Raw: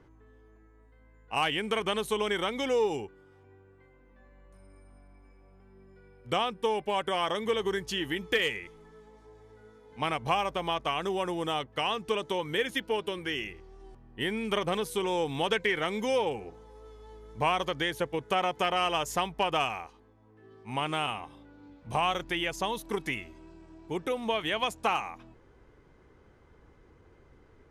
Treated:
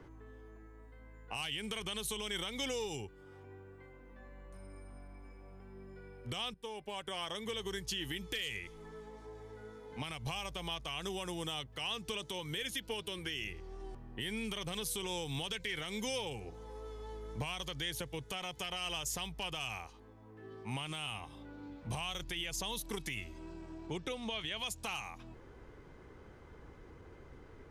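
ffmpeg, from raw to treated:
ffmpeg -i in.wav -filter_complex "[0:a]asettb=1/sr,asplit=3[link_01][link_02][link_03];[link_01]atrim=end=23.874[link_04];[link_02]atrim=start=23.87:end=24.57,asetpts=PTS-STARTPTS,afade=type=in:duration=0.004:curve=qsin,afade=type=out:start_time=0.696:duration=0.004:curve=qsin,lowpass=6500[link_05];[link_03]atrim=start=24.566[link_06];[link_04][link_05]acrossfade=duration=0.004:curve1=hsin:curve2=qsin[link_07];[link_07][link_06]acrossfade=duration=0.004:curve1=qsin:curve2=hsin,asplit=2[link_08][link_09];[link_08]atrim=end=6.54,asetpts=PTS-STARTPTS,afade=type=out:start_time=6.536:duration=0.004:curve=hsin:silence=0.223872[link_10];[link_09]atrim=start=6.54,asetpts=PTS-STARTPTS,afade=type=in:duration=1.8:silence=0.223872[link_11];[link_10][link_11]concat=n=2:v=0:a=1,acrossover=split=130|3000[link_12][link_13][link_14];[link_13]acompressor=threshold=-48dB:ratio=3[link_15];[link_12][link_15][link_14]amix=inputs=3:normalize=0,alimiter=level_in=7.5dB:limit=-24dB:level=0:latency=1:release=56,volume=-7.5dB,volume=4dB" out.wav

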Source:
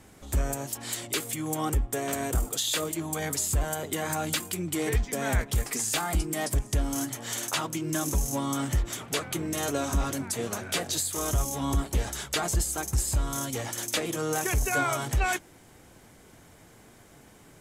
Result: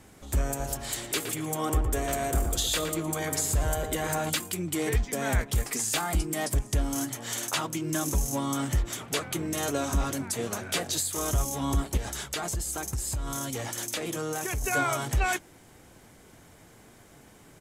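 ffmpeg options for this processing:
ffmpeg -i in.wav -filter_complex "[0:a]asplit=3[link_01][link_02][link_03];[link_01]afade=type=out:start_time=0.59:duration=0.02[link_04];[link_02]asplit=2[link_05][link_06];[link_06]adelay=114,lowpass=frequency=1900:poles=1,volume=-4.5dB,asplit=2[link_07][link_08];[link_08]adelay=114,lowpass=frequency=1900:poles=1,volume=0.51,asplit=2[link_09][link_10];[link_10]adelay=114,lowpass=frequency=1900:poles=1,volume=0.51,asplit=2[link_11][link_12];[link_12]adelay=114,lowpass=frequency=1900:poles=1,volume=0.51,asplit=2[link_13][link_14];[link_14]adelay=114,lowpass=frequency=1900:poles=1,volume=0.51,asplit=2[link_15][link_16];[link_16]adelay=114,lowpass=frequency=1900:poles=1,volume=0.51,asplit=2[link_17][link_18];[link_18]adelay=114,lowpass=frequency=1900:poles=1,volume=0.51[link_19];[link_05][link_07][link_09][link_11][link_13][link_15][link_17][link_19]amix=inputs=8:normalize=0,afade=type=in:start_time=0.59:duration=0.02,afade=type=out:start_time=4.29:duration=0.02[link_20];[link_03]afade=type=in:start_time=4.29:duration=0.02[link_21];[link_04][link_20][link_21]amix=inputs=3:normalize=0,asettb=1/sr,asplit=3[link_22][link_23][link_24];[link_22]atrim=end=11.974[link_25];[link_23]atrim=start=11.97:end=14.64,asetpts=PTS-STARTPTS,afade=type=in:duration=0.004:curve=qsin,afade=type=out:start_time=2.666:duration=0.004:curve=qsin,acompressor=threshold=-28dB:ratio=4:attack=3.2:release=140:knee=1:detection=peak[link_26];[link_24]atrim=start=14.636[link_27];[link_25][link_26]acrossfade=duration=0.004:curve1=hsin:curve2=qsin[link_28];[link_28][link_27]acrossfade=duration=0.004:curve1=qsin:curve2=hsin" out.wav

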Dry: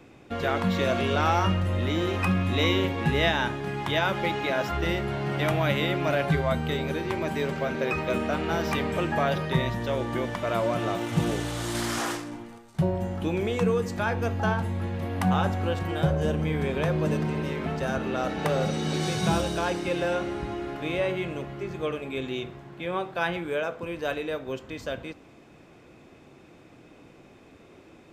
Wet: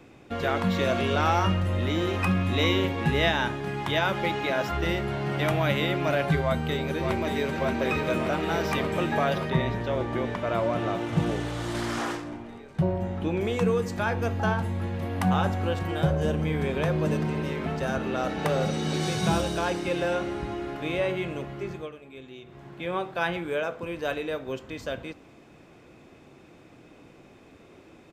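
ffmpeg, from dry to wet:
ffmpeg -i in.wav -filter_complex "[0:a]asplit=2[link_01][link_02];[link_02]afade=type=in:start_time=6.42:duration=0.01,afade=type=out:start_time=7.56:duration=0.01,aecho=0:1:580|1160|1740|2320|2900|3480|4060|4640|5220|5800|6380|6960:0.530884|0.424708|0.339766|0.271813|0.21745|0.17396|0.139168|0.111335|0.0890676|0.0712541|0.0570033|0.0456026[link_03];[link_01][link_03]amix=inputs=2:normalize=0,asettb=1/sr,asplit=3[link_04][link_05][link_06];[link_04]atrim=end=9.504[link_07];[link_05]atrim=start=9.5:end=13.41,asetpts=PTS-STARTPTS,afade=type=in:duration=0.004:curve=qsin,afade=type=out:start_time=3.906:duration=0.004:curve=qsin,lowpass=frequency=3100:poles=1[link_08];[link_06]atrim=start=13.406[link_09];[link_07][link_08]acrossfade=duration=0.004:curve1=hsin:curve2=qsin[link_10];[link_10][link_09]acrossfade=duration=0.004:curve1=qsin:curve2=hsin,asplit=3[link_11][link_12][link_13];[link_11]atrim=end=21.9,asetpts=PTS-STARTPTS,afade=type=out:start_time=21.7:duration=0.2:silence=0.237137[link_14];[link_12]atrim=start=21.9:end=22.45,asetpts=PTS-STARTPTS,volume=-12.5dB[link_15];[link_13]atrim=start=22.45,asetpts=PTS-STARTPTS,afade=type=in:duration=0.2:silence=0.237137[link_16];[link_14][link_15][link_16]concat=n=3:v=0:a=1" out.wav

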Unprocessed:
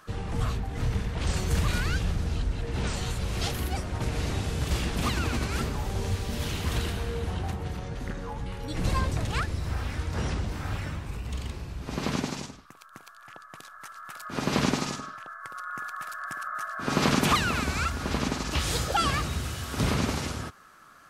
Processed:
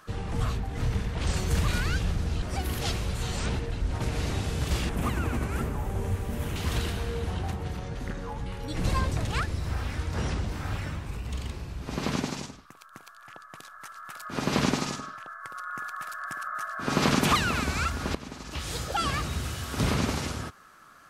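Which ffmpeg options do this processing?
ffmpeg -i in.wav -filter_complex "[0:a]asettb=1/sr,asplit=3[link_01][link_02][link_03];[link_01]atrim=end=4.894[link_04];[link_02]atrim=start=4.89:end=6.56,asetpts=PTS-STARTPTS,afade=type=in:duration=0.004:curve=qsin,afade=type=out:start_time=1.666:duration=0.004:curve=qsin,equalizer=frequency=4500:width=0.96:gain=-13.5[link_05];[link_03]atrim=start=6.556[link_06];[link_04][link_05]acrossfade=duration=0.004:curve1=hsin:curve2=qsin[link_07];[link_07][link_06]acrossfade=duration=0.004:curve1=qsin:curve2=hsin,asplit=4[link_08][link_09][link_10][link_11];[link_08]atrim=end=2.422[link_12];[link_09]atrim=start=2.418:end=3.912,asetpts=PTS-STARTPTS,areverse[link_13];[link_10]atrim=start=3.908:end=18.15,asetpts=PTS-STARTPTS,afade=type=out:start_time=14.238:duration=0.004:curve=hsin:silence=0.16788[link_14];[link_11]atrim=start=18.15,asetpts=PTS-STARTPTS,afade=type=in:duration=1.31:silence=0.16788[link_15];[link_12][link_13]acrossfade=duration=0.004:curve1=hsin:curve2=hsin[link_16];[link_14][link_15]concat=n=2:v=0:a=1[link_17];[link_16][link_17]acrossfade=duration=0.004:curve1=hsin:curve2=hsin" out.wav

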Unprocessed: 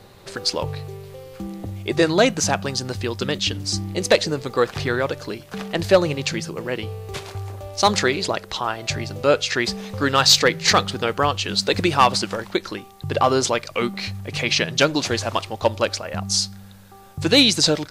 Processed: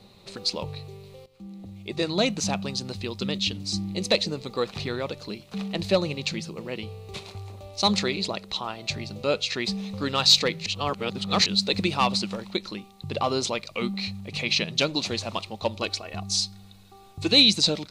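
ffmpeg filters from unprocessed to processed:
ffmpeg -i in.wav -filter_complex "[0:a]asettb=1/sr,asplit=3[link_01][link_02][link_03];[link_01]atrim=end=15.824[link_04];[link_02]atrim=start=15.82:end=17.32,asetpts=PTS-STARTPTS,afade=type=in:duration=0.004:curve=qsin,afade=type=out:start_time=1.496:duration=0.004:curve=qsin,aecho=1:1:2.7:0.65,atrim=end_sample=66150[link_05];[link_03]atrim=start=17.316[link_06];[link_04][link_05]acrossfade=duration=0.004:curve1=hsin:curve2=qsin[link_07];[link_07][link_06]acrossfade=duration=0.004:curve1=qsin:curve2=hsin,asplit=4[link_08][link_09][link_10][link_11];[link_08]atrim=end=1.26,asetpts=PTS-STARTPTS,afade=type=out:start_time=1.256:duration=0.004:curve=hsin:silence=0.16788[link_12];[link_09]atrim=start=1.26:end=10.662,asetpts=PTS-STARTPTS,afade=type=in:duration=1.06:silence=0.16788[link_13];[link_10]atrim=start=10.658:end=11.462,asetpts=PTS-STARTPTS,areverse[link_14];[link_11]atrim=start=11.458[link_15];[link_12][link_13]concat=n=2:v=0:a=1[link_16];[link_16][link_14]acrossfade=duration=0.004:curve1=hsin:curve2=hsin[link_17];[link_17][link_15]acrossfade=duration=0.004:curve1=hsin:curve2=hsin,equalizer=frequency=200:width_type=o:width=0.33:gain=10,equalizer=frequency=1600:width_type=o:width=0.33:gain=-9,equalizer=frequency=2500:width_type=o:width=0.33:gain=5,equalizer=frequency=4000:width_type=o:width=0.33:gain=9,equalizer=frequency=12500:width_type=o:width=0.33:gain=-6,volume=-8dB" out.wav

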